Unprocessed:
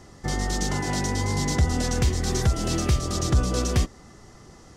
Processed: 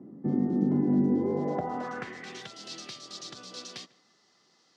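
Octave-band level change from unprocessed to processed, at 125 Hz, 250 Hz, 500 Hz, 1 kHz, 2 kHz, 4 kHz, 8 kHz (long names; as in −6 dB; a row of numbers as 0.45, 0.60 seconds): −13.0, +1.0, −3.0, −6.5, −11.0, −10.0, −18.0 decibels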